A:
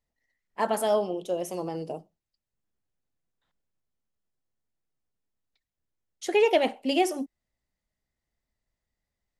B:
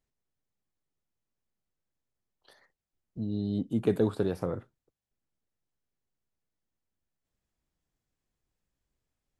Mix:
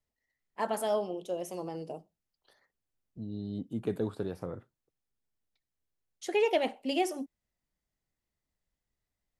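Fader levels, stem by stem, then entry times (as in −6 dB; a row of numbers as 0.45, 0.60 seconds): −5.5, −6.5 decibels; 0.00, 0.00 seconds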